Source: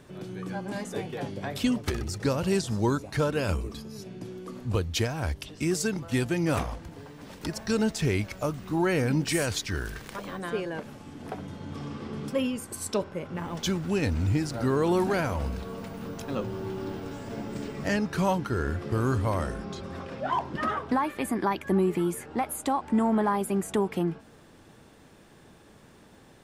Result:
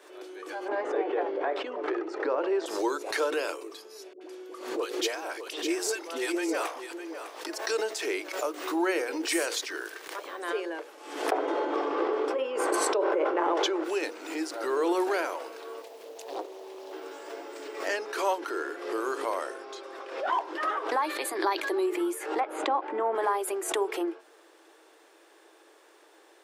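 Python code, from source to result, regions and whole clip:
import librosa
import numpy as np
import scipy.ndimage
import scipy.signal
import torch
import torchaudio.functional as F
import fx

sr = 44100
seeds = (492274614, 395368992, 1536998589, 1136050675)

y = fx.chain(x, sr, fx.lowpass(hz=1400.0, slope=12),
    fx.env_flatten(amount_pct=70), at=(0.68, 2.66))
y = fx.chain(y, sr, fx.dispersion(late='highs', ms=80.0, hz=570.0),
    fx.echo_single(ms=604, db=-10.0), at=(4.13, 7.45))
y = fx.chain(y, sr, fx.bandpass_q(hz=530.0, q=0.64),
    fx.env_flatten(amount_pct=100), at=(11.31, 13.84))
y = fx.chain(y, sr, fx.peak_eq(hz=2200.0, db=-4.0, octaves=0.36),
    fx.fixed_phaser(hz=330.0, stages=6),
    fx.doppler_dist(depth_ms=0.76), at=(15.82, 16.93))
y = fx.chain(y, sr, fx.peak_eq(hz=4200.0, db=12.0, octaves=0.44),
    fx.sustainer(db_per_s=85.0), at=(21.02, 21.86))
y = fx.chain(y, sr, fx.lowpass(hz=2700.0, slope=12),
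    fx.low_shelf(hz=320.0, db=9.0), at=(22.4, 23.15))
y = scipy.signal.sosfilt(scipy.signal.cheby1(6, 1.0, 320.0, 'highpass', fs=sr, output='sos'), y)
y = fx.hum_notches(y, sr, base_hz=60, count=9)
y = fx.pre_swell(y, sr, db_per_s=75.0)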